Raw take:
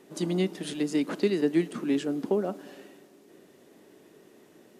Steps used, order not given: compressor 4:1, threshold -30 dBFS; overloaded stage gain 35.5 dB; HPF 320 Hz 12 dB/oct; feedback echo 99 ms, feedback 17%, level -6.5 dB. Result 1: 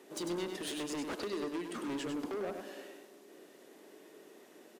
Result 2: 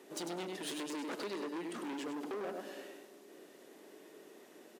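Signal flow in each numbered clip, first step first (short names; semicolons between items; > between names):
HPF > compressor > overloaded stage > feedback echo; compressor > feedback echo > overloaded stage > HPF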